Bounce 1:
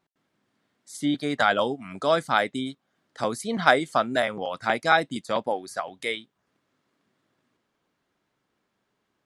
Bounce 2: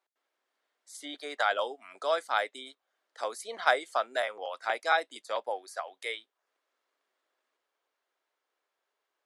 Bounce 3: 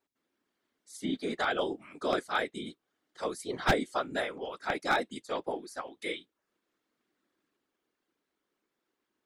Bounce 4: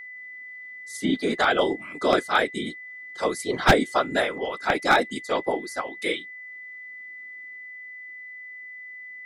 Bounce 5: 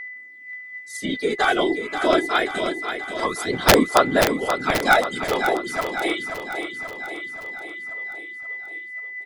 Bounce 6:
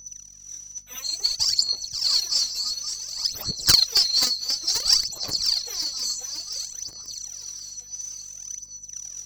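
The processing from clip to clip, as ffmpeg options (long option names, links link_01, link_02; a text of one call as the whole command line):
ffmpeg -i in.wav -af "highpass=frequency=450:width=0.5412,highpass=frequency=450:width=1.3066,volume=-6dB" out.wav
ffmpeg -i in.wav -af "afftfilt=real='hypot(re,im)*cos(2*PI*random(0))':imag='hypot(re,im)*sin(2*PI*random(1))':win_size=512:overlap=0.75,aeval=exprs='0.0794*(abs(mod(val(0)/0.0794+3,4)-2)-1)':channel_layout=same,lowshelf=frequency=420:width_type=q:width=1.5:gain=12.5,volume=5dB" out.wav
ffmpeg -i in.wav -af "aeval=exprs='val(0)+0.00447*sin(2*PI*2000*n/s)':channel_layout=same,volume=9dB" out.wav
ffmpeg -i in.wav -filter_complex "[0:a]aphaser=in_gain=1:out_gain=1:delay=3.1:decay=0.55:speed=0.25:type=sinusoidal,aeval=exprs='(mod(1.58*val(0)+1,2)-1)/1.58':channel_layout=same,asplit=2[link_01][link_02];[link_02]aecho=0:1:532|1064|1596|2128|2660|3192|3724:0.398|0.231|0.134|0.0777|0.0451|0.0261|0.0152[link_03];[link_01][link_03]amix=inputs=2:normalize=0" out.wav
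ffmpeg -i in.wav -af "afftfilt=real='real(if(lt(b,736),b+184*(1-2*mod(floor(b/184),2)),b),0)':imag='imag(if(lt(b,736),b+184*(1-2*mod(floor(b/184),2)),b),0)':win_size=2048:overlap=0.75,aphaser=in_gain=1:out_gain=1:delay=4.1:decay=0.77:speed=0.57:type=sinusoidal,aeval=exprs='val(0)+0.00251*(sin(2*PI*50*n/s)+sin(2*PI*2*50*n/s)/2+sin(2*PI*3*50*n/s)/3+sin(2*PI*4*50*n/s)/4+sin(2*PI*5*50*n/s)/5)':channel_layout=same,volume=-7dB" out.wav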